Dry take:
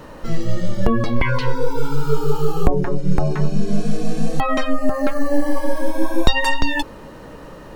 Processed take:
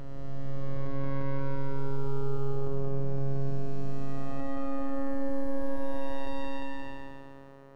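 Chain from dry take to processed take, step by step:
spectrum smeared in time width 764 ms
phases set to zero 137 Hz
high-shelf EQ 2,800 Hz −10.5 dB
level −7.5 dB

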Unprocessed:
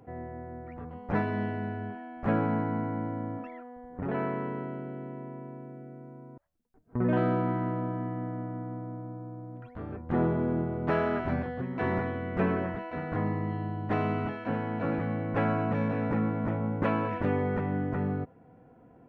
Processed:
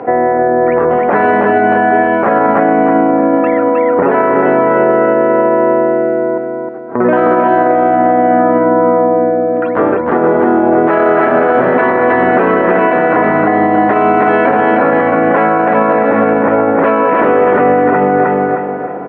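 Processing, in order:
downward compressor 4 to 1, threshold −34 dBFS, peak gain reduction 10.5 dB
flat-topped band-pass 870 Hz, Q 0.52
on a send: repeating echo 311 ms, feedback 41%, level −4 dB
on the sum: boost into a limiter +35 dB
level −1 dB

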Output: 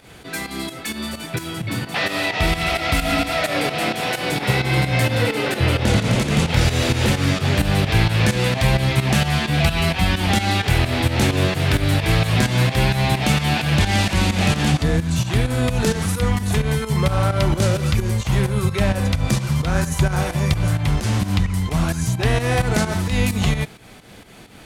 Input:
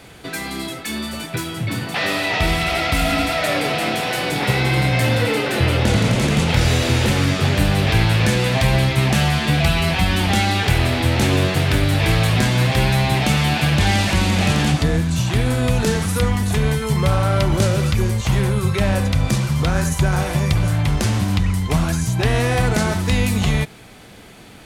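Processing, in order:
fake sidechain pumping 130 BPM, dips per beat 2, −11 dB, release 161 ms

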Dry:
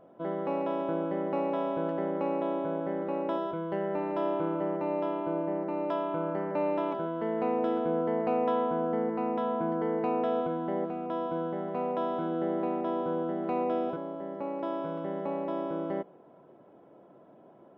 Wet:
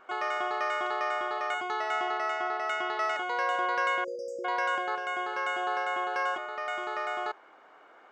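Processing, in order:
time-frequency box erased 0:08.85–0:09.74, 280–2,200 Hz
change of speed 2.19×

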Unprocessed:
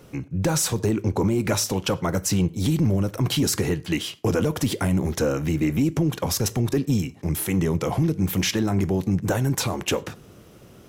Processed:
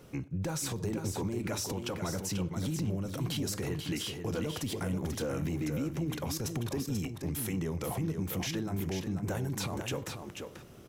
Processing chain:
brickwall limiter −21.5 dBFS, peak gain reduction 8 dB
on a send: single-tap delay 488 ms −6.5 dB
on the sum: level −5.5 dB

